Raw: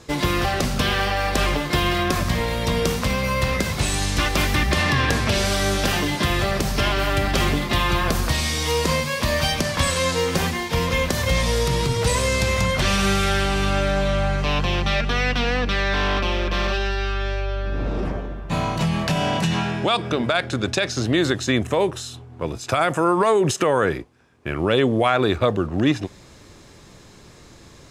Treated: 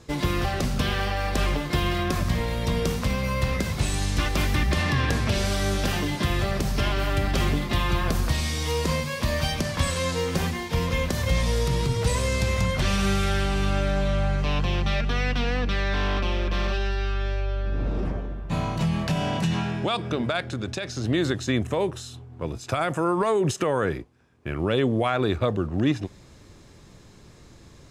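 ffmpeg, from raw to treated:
ffmpeg -i in.wav -filter_complex "[0:a]asplit=3[link_01][link_02][link_03];[link_01]afade=type=out:start_time=20.42:duration=0.02[link_04];[link_02]acompressor=threshold=-27dB:ratio=1.5:attack=3.2:release=140:knee=1:detection=peak,afade=type=in:start_time=20.42:duration=0.02,afade=type=out:start_time=21.03:duration=0.02[link_05];[link_03]afade=type=in:start_time=21.03:duration=0.02[link_06];[link_04][link_05][link_06]amix=inputs=3:normalize=0,lowshelf=frequency=270:gain=6,volume=-6.5dB" out.wav

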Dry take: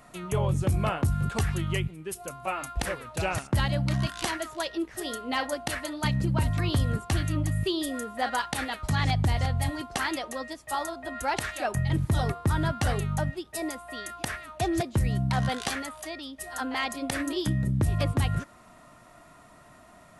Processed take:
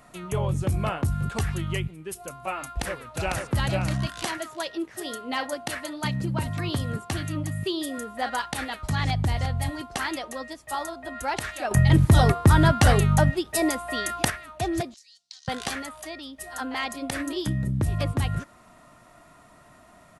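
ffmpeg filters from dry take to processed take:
ffmpeg -i in.wav -filter_complex "[0:a]asplit=2[link_01][link_02];[link_02]afade=type=in:start_time=2.65:duration=0.01,afade=type=out:start_time=3.51:duration=0.01,aecho=0:1:500|1000|1500:0.668344|0.100252|0.0150377[link_03];[link_01][link_03]amix=inputs=2:normalize=0,asettb=1/sr,asplit=3[link_04][link_05][link_06];[link_04]atrim=end=4.234[link_07];[link_05]atrim=start=4.23:end=7.98,asetpts=PTS-STARTPTS,afade=type=in:duration=0.004:curve=qsin,afade=type=out:start_time=3.746:duration=0.004:curve=qsin,highpass=110[link_08];[link_06]atrim=start=7.976[link_09];[link_07][link_08]acrossfade=duration=0.004:curve1=hsin:curve2=qsin[link_10];[link_10][link_09]acrossfade=duration=0.004:curve1=qsin:curve2=hsin,asettb=1/sr,asplit=3[link_11][link_12][link_13];[link_11]atrim=end=14.944[link_14];[link_12]atrim=start=14.94:end=15.48,asetpts=PTS-STARTPTS,afade=type=in:duration=0.004:curve=qsin,afade=type=out:start_time=0.536:duration=0.004:curve=qsin,asuperpass=centerf=5300:order=4:qfactor=2[link_15];[link_13]atrim=start=15.476[link_16];[link_14][link_15]acrossfade=duration=0.004:curve1=hsin:curve2=qsin[link_17];[link_17][link_16]acrossfade=duration=0.004:curve1=qsin:curve2=hsin,asplit=3[link_18][link_19][link_20];[link_18]atrim=end=11.712[link_21];[link_19]atrim=start=11.708:end=14.302,asetpts=PTS-STARTPTS,volume=9dB[link_22];[link_20]atrim=start=14.298[link_23];[link_21][link_22]acrossfade=duration=0.004:curve1=hsin:curve2=hsin[link_24];[link_24][link_23]acrossfade=duration=0.004:curve1=hsin:curve2=hsin" out.wav

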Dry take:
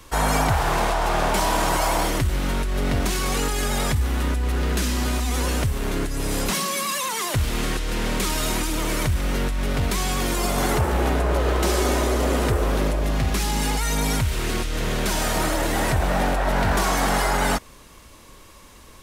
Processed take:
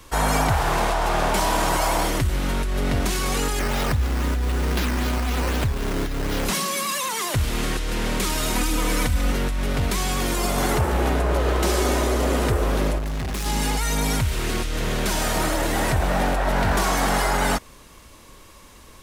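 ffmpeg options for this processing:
ffmpeg -i in.wav -filter_complex "[0:a]asettb=1/sr,asplit=3[link_01][link_02][link_03];[link_01]atrim=end=3.594[link_04];[link_02]atrim=start=3.59:end=6.45,asetpts=PTS-STARTPTS,afade=type=in:duration=0.004:curve=qsin,afade=type=out:start_time=2.856:duration=0.004:curve=qsin,acrusher=samples=9:mix=1:aa=0.000001:lfo=1:lforange=9:lforate=3.9[link_05];[link_03]atrim=start=6.446[link_06];[link_04][link_05]acrossfade=duration=0.004:curve1=hsin:curve2=qsin[link_07];[link_07][link_06]acrossfade=duration=0.004:curve1=qsin:curve2=hsin,asettb=1/sr,asplit=3[link_08][link_09][link_10];[link_08]atrim=end=8.554[link_11];[link_09]atrim=start=8.55:end=9.32,asetpts=PTS-STARTPTS,afade=type=in:duration=0.004:curve=qsin,afade=type=out:start_time=0.766:duration=0.004:curve=qsin,aecho=1:1:4:0.65,atrim=end_sample=33957[link_12];[link_10]atrim=start=9.316[link_13];[link_11][link_12]acrossfade=duration=0.004:curve1=hsin:curve2=qsin[link_14];[link_14][link_13]acrossfade=duration=0.004:curve1=qsin:curve2=hsin,asettb=1/sr,asplit=3[link_15][link_16][link_17];[link_15]atrim=end=12.984[link_18];[link_16]atrim=start=12.98:end=13.46,asetpts=PTS-STARTPTS,afade=type=in:duration=0.004:curve=qsin,afade=type=out:start_time=0.476:duration=0.004:curve=qsin,asoftclip=type=hard:threshold=-24.5dB[link_19];[link_17]atrim=start=13.456[link_20];[link_18][link_19]acrossfade=duration=0.004:curve1=hsin:curve2=qsin[link_21];[link_21][link_20]acrossfade=duration=0.004:curve1=qsin:curve2=hsin" out.wav

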